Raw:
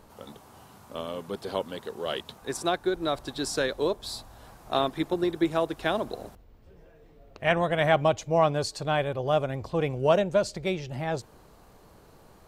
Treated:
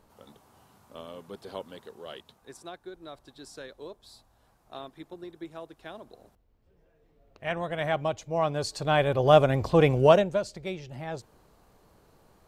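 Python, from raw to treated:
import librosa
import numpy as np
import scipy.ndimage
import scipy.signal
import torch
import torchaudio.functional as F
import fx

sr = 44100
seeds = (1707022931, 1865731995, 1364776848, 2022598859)

y = fx.gain(x, sr, db=fx.line((1.76, -8.0), (2.71, -16.0), (6.05, -16.0), (7.77, -6.0), (8.31, -6.0), (9.29, 7.0), (10.0, 7.0), (10.44, -6.0)))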